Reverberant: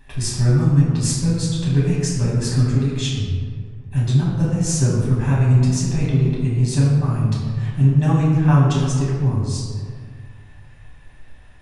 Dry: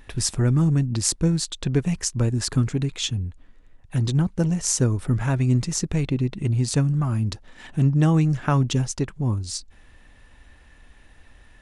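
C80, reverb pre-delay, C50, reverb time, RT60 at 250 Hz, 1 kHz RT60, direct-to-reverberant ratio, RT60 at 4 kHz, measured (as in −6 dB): 2.0 dB, 5 ms, 0.0 dB, 2.0 s, 2.0 s, 1.9 s, −7.0 dB, 0.95 s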